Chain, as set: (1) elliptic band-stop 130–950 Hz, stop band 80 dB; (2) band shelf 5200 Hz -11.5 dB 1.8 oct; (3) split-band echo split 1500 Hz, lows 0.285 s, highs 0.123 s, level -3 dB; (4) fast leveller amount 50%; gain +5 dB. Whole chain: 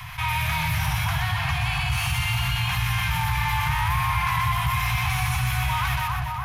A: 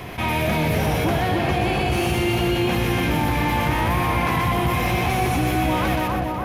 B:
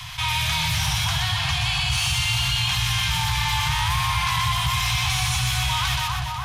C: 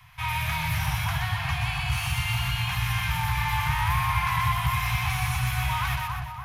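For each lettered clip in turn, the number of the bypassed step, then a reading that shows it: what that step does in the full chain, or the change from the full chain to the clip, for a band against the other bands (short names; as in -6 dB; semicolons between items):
1, 500 Hz band +20.5 dB; 2, 4 kHz band +9.5 dB; 4, crest factor change +2.0 dB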